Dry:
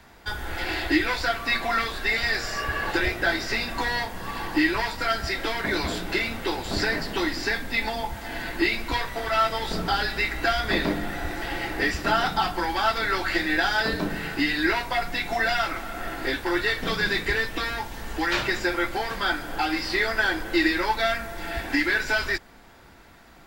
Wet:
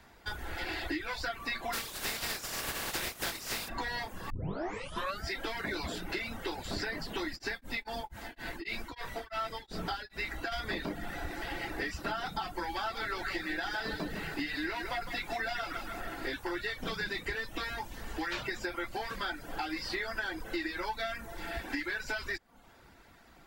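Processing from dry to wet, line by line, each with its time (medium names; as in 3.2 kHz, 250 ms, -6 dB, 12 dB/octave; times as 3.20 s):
1.72–3.68 s: spectral contrast reduction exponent 0.33
4.30 s: tape start 0.95 s
7.35–10.51 s: tremolo of two beating tones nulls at 4.8 Hz -> 2 Hz
12.70–16.01 s: bit-crushed delay 157 ms, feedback 35%, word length 8-bit, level -7.5 dB
whole clip: reverb removal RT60 0.5 s; compression, threshold -26 dBFS; trim -6 dB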